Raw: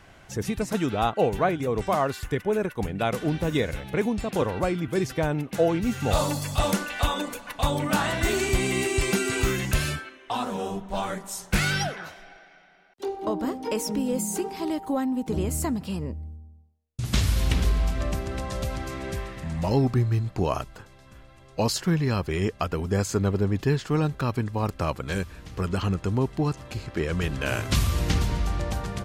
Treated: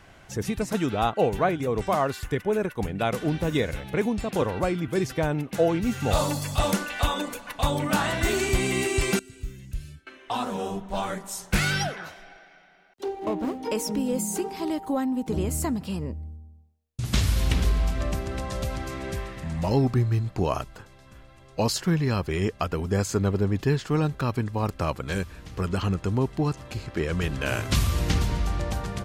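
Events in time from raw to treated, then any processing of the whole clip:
9.19–10.07 s: amplifier tone stack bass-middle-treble 10-0-1
13.04–13.63 s: median filter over 25 samples

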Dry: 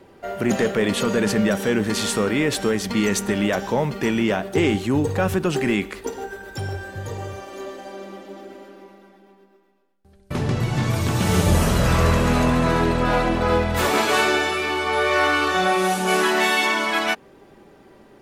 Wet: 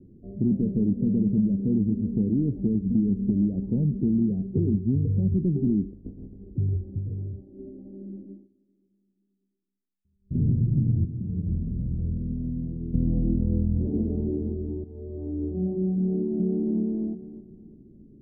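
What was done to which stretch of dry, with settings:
4.26–5.25 s: comb of notches 300 Hz
5.92–6.38 s: spectral contrast reduction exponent 0.21
6.98–7.58 s: gain -3.5 dB
8.25–10.44 s: dip -22 dB, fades 0.23 s
11.05–12.94 s: pre-emphasis filter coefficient 0.8
13.48–14.10 s: echo throw 460 ms, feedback 50%, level -11 dB
14.84–15.45 s: fade in, from -12.5 dB
16.04–16.70 s: echo throw 350 ms, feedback 30%, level -2.5 dB
whole clip: inverse Chebyshev low-pass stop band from 1.2 kHz, stop band 70 dB; compression, threshold -24 dBFS; trim +5 dB

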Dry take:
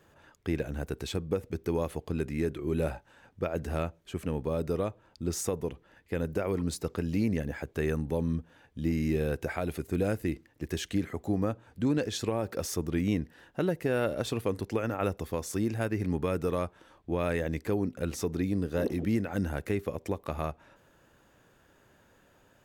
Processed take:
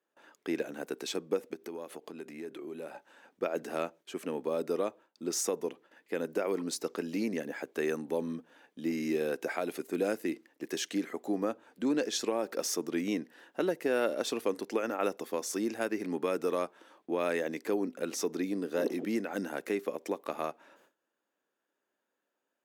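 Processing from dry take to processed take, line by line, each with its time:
1.53–2.95 s: compression 3:1, threshold -38 dBFS
whole clip: high-pass 250 Hz 24 dB/octave; gate with hold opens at -51 dBFS; dynamic bell 5.7 kHz, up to +5 dB, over -57 dBFS, Q 2.2

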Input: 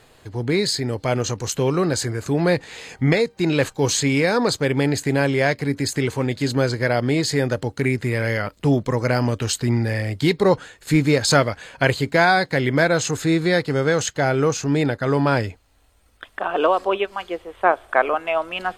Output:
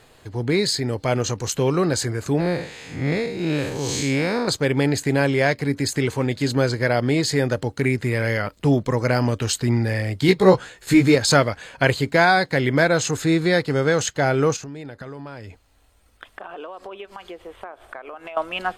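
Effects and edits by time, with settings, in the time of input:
2.40–4.48 s: spectral blur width 178 ms
10.27–11.15 s: doubling 16 ms -2 dB
14.56–18.37 s: compression 10:1, threshold -32 dBFS

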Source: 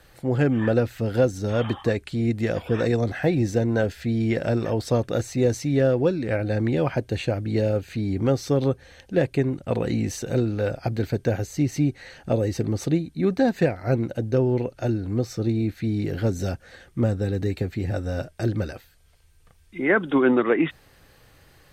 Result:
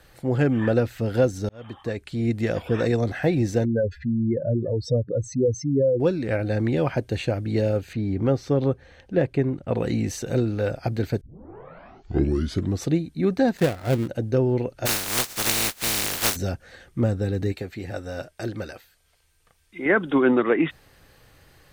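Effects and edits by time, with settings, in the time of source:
1.49–2.31 s: fade in
3.65–6.00 s: spectral contrast enhancement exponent 2.7
7.93–9.77 s: low-pass 2.2 kHz 6 dB/octave
11.21 s: tape start 1.65 s
13.57–14.08 s: dead-time distortion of 0.21 ms
14.85–16.35 s: spectral contrast reduction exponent 0.14
17.52–19.86 s: bass shelf 280 Hz -10.5 dB

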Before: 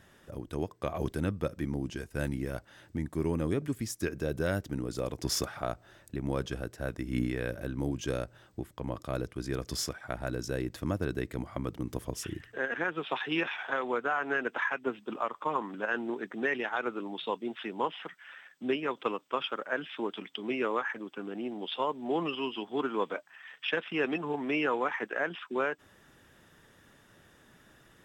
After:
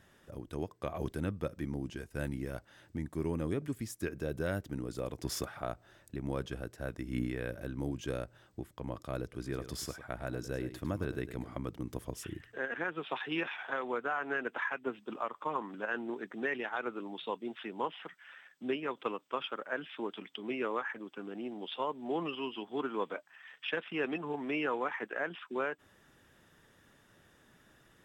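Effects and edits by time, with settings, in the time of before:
9.23–11.58 s: delay 103 ms -11.5 dB
whole clip: dynamic bell 5.6 kHz, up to -5 dB, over -55 dBFS, Q 1.6; trim -4 dB

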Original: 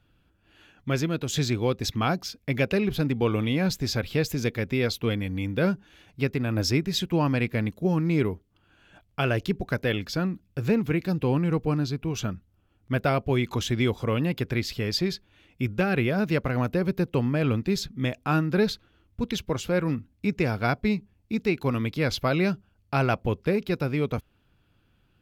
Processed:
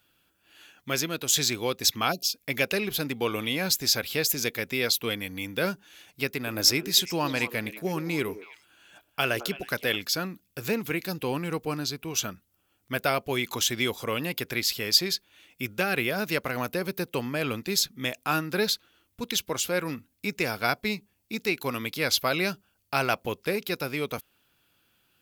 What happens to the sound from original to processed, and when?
2.12–2.34 s: spectral selection erased 730–2400 Hz
6.31–9.96 s: repeats whose band climbs or falls 107 ms, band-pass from 370 Hz, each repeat 1.4 oct, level -9 dB
whole clip: RIAA curve recording

